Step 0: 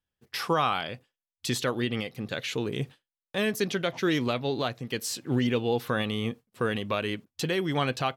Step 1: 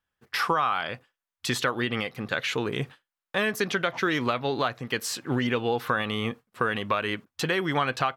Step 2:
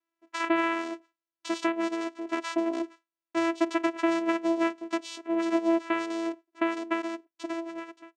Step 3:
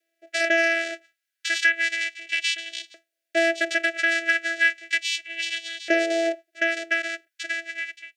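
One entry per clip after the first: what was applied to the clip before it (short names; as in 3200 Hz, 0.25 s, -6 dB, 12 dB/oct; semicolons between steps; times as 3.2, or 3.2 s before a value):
bell 1300 Hz +11 dB 1.8 oct; compressor 6:1, threshold -21 dBFS, peak gain reduction 9 dB
ending faded out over 1.57 s; vocoder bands 4, saw 332 Hz
sine folder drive 7 dB, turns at -12.5 dBFS; Chebyshev band-stop 650–1500 Hz, order 4; LFO high-pass saw up 0.34 Hz 540–3700 Hz; gain +1 dB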